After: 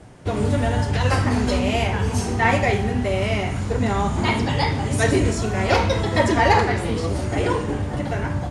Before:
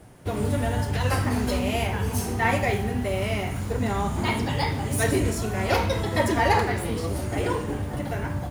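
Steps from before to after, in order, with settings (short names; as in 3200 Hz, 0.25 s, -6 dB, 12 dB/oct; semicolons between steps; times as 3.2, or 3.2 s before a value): LPF 8400 Hz 24 dB/oct; gain +4.5 dB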